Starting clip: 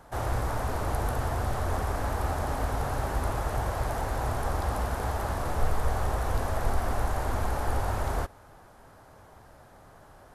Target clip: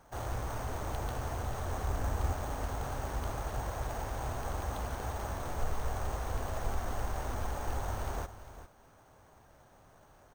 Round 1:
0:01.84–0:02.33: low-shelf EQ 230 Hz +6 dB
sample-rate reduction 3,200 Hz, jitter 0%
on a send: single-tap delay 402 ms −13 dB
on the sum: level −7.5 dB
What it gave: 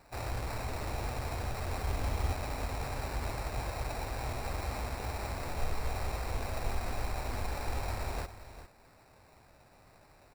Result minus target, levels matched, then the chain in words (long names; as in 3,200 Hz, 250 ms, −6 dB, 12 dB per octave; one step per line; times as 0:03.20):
sample-rate reduction: distortion +5 dB
0:01.84–0:02.33: low-shelf EQ 230 Hz +6 dB
sample-rate reduction 7,400 Hz, jitter 0%
on a send: single-tap delay 402 ms −13 dB
on the sum: level −7.5 dB